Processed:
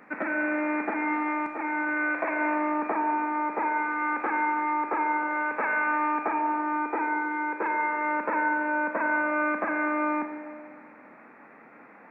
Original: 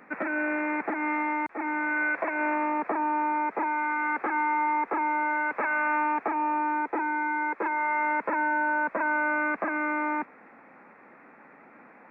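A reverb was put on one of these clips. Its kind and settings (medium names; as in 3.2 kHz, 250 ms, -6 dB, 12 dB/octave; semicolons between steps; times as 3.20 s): Schroeder reverb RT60 2 s, combs from 27 ms, DRR 4 dB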